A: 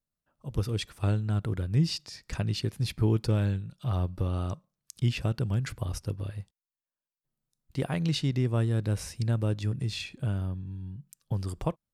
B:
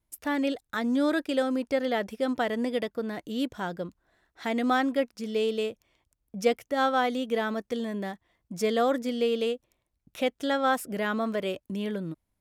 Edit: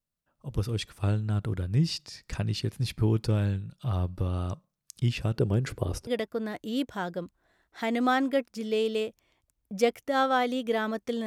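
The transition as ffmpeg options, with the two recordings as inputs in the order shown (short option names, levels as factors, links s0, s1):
-filter_complex "[0:a]asettb=1/sr,asplit=3[s0][s1][s2];[s0]atrim=end=5.364[s3];[s1]atrim=start=5.36:end=6.07,asetpts=PTS-STARTPTS,afade=t=in:d=0.004:c=qsin,afade=t=out:st=0.706:d=0.004:c=qsin,equalizer=f=410:t=o:w=1.3:g=12.5[s4];[s2]atrim=start=6.066[s5];[s3][s4]acrossfade=d=0.004:c1=hsin:c2=qsin[s6];[s6][s5]acrossfade=d=0.004:c1=qsin:c2=hsin,apad=whole_dur=11.26,atrim=end=11.26,atrim=end=6.072[s7];[1:a]atrim=start=2.698:end=7.89[s8];[s7][s8]acrossfade=d=0.004:c1=hsin:c2=hsin"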